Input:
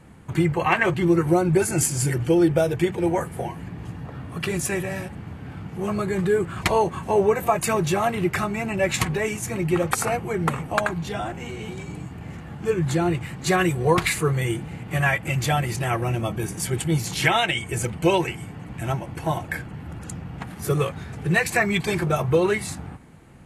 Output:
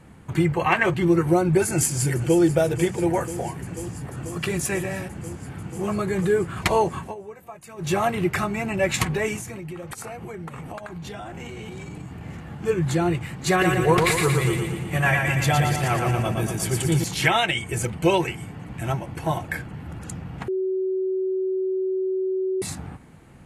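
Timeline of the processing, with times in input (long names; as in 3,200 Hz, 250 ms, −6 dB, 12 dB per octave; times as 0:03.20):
0:01.66–0:02.41: delay throw 490 ms, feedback 85%, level −14 dB
0:07.00–0:07.92: duck −20 dB, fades 0.15 s
0:09.40–0:12.25: downward compressor 16 to 1, threshold −31 dBFS
0:13.50–0:17.04: repeating echo 116 ms, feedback 57%, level −4 dB
0:20.48–0:22.62: beep over 377 Hz −21.5 dBFS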